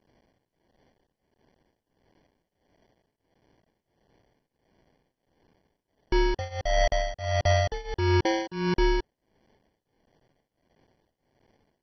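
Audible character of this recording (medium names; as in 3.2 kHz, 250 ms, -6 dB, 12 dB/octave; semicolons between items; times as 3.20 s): a quantiser's noise floor 12-bit, dither triangular; tremolo triangle 1.5 Hz, depth 95%; aliases and images of a low sample rate 1.3 kHz, jitter 0%; MP2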